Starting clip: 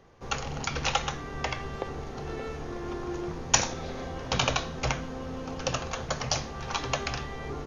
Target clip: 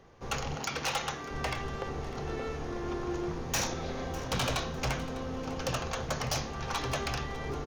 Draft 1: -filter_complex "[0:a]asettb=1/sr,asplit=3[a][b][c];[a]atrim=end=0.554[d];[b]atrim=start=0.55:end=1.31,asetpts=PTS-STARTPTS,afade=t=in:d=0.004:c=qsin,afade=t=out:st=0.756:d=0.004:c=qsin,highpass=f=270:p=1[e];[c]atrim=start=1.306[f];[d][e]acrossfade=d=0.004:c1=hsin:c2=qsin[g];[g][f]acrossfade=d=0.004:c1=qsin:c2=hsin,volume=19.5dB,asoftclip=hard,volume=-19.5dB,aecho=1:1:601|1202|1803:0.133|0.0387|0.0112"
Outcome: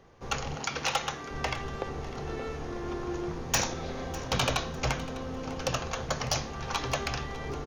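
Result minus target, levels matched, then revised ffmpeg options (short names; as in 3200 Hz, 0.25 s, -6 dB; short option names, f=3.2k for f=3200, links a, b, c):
overloaded stage: distortion -5 dB
-filter_complex "[0:a]asettb=1/sr,asplit=3[a][b][c];[a]atrim=end=0.554[d];[b]atrim=start=0.55:end=1.31,asetpts=PTS-STARTPTS,afade=t=in:d=0.004:c=qsin,afade=t=out:st=0.756:d=0.004:c=qsin,highpass=f=270:p=1[e];[c]atrim=start=1.306[f];[d][e]acrossfade=d=0.004:c1=hsin:c2=qsin[g];[g][f]acrossfade=d=0.004:c1=qsin:c2=hsin,volume=26.5dB,asoftclip=hard,volume=-26.5dB,aecho=1:1:601|1202|1803:0.133|0.0387|0.0112"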